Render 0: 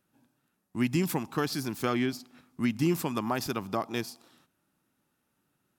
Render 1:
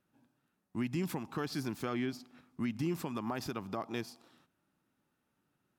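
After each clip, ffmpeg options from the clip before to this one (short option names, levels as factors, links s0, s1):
-af "highshelf=f=5500:g=-8.5,alimiter=limit=0.0708:level=0:latency=1:release=146,volume=0.75"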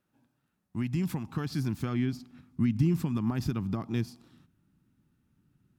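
-af "asubboost=boost=10.5:cutoff=190"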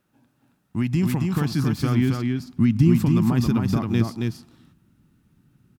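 -af "aecho=1:1:272:0.668,volume=2.51"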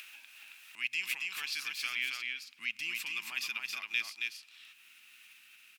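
-af "acompressor=mode=upward:threshold=0.0562:ratio=2.5,highpass=f=2500:t=q:w=4.7,volume=0.631"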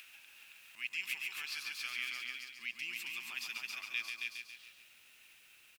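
-af "acrusher=bits=9:mix=0:aa=0.000001,aecho=1:1:140|280|420|560|700|840:0.501|0.241|0.115|0.0554|0.0266|0.0128,volume=0.531"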